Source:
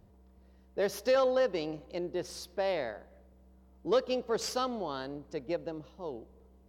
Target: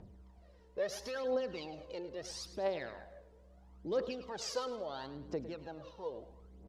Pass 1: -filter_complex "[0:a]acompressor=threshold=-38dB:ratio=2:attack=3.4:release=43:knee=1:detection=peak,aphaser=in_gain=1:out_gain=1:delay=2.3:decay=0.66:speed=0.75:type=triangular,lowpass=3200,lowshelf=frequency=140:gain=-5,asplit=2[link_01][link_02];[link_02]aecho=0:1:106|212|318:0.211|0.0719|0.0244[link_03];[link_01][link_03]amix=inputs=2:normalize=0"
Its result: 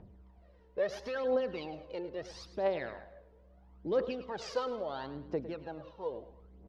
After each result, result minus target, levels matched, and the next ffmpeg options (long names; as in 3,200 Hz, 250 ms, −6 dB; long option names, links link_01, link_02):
8,000 Hz band −11.5 dB; downward compressor: peak gain reduction −4 dB
-filter_complex "[0:a]acompressor=threshold=-38dB:ratio=2:attack=3.4:release=43:knee=1:detection=peak,aphaser=in_gain=1:out_gain=1:delay=2.3:decay=0.66:speed=0.75:type=triangular,lowpass=8000,lowshelf=frequency=140:gain=-5,asplit=2[link_01][link_02];[link_02]aecho=0:1:106|212|318:0.211|0.0719|0.0244[link_03];[link_01][link_03]amix=inputs=2:normalize=0"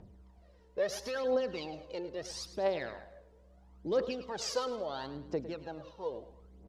downward compressor: peak gain reduction −4 dB
-filter_complex "[0:a]acompressor=threshold=-45.5dB:ratio=2:attack=3.4:release=43:knee=1:detection=peak,aphaser=in_gain=1:out_gain=1:delay=2.3:decay=0.66:speed=0.75:type=triangular,lowpass=8000,lowshelf=frequency=140:gain=-5,asplit=2[link_01][link_02];[link_02]aecho=0:1:106|212|318:0.211|0.0719|0.0244[link_03];[link_01][link_03]amix=inputs=2:normalize=0"